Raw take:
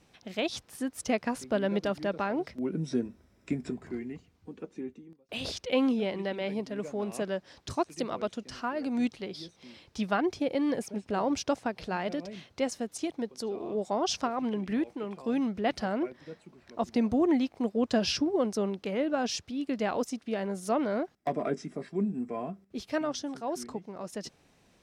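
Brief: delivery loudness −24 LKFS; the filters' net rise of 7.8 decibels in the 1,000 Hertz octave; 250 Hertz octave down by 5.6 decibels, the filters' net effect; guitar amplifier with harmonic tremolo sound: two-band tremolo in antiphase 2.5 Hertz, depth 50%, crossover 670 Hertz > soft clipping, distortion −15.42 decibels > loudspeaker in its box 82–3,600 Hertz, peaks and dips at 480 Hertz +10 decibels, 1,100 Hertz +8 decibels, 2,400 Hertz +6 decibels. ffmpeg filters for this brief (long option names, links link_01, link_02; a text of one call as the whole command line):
ffmpeg -i in.wav -filter_complex "[0:a]equalizer=frequency=250:width_type=o:gain=-8,equalizer=frequency=1000:width_type=o:gain=6,acrossover=split=670[link_01][link_02];[link_01]aeval=exprs='val(0)*(1-0.5/2+0.5/2*cos(2*PI*2.5*n/s))':channel_layout=same[link_03];[link_02]aeval=exprs='val(0)*(1-0.5/2-0.5/2*cos(2*PI*2.5*n/s))':channel_layout=same[link_04];[link_03][link_04]amix=inputs=2:normalize=0,asoftclip=threshold=-24dB,highpass=82,equalizer=frequency=480:width_type=q:width=4:gain=10,equalizer=frequency=1100:width_type=q:width=4:gain=8,equalizer=frequency=2400:width_type=q:width=4:gain=6,lowpass=frequency=3600:width=0.5412,lowpass=frequency=3600:width=1.3066,volume=9dB" out.wav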